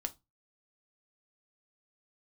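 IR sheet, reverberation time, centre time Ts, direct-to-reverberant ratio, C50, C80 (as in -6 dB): 0.20 s, 4 ms, 7.5 dB, 21.0 dB, 31.0 dB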